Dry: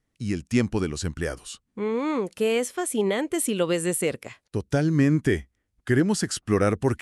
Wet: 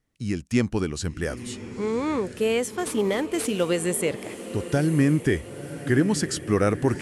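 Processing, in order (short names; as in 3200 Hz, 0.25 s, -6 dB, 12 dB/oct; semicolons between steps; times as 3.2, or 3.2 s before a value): 2.78–3.69 CVSD 64 kbps; diffused feedback echo 0.999 s, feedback 51%, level -12 dB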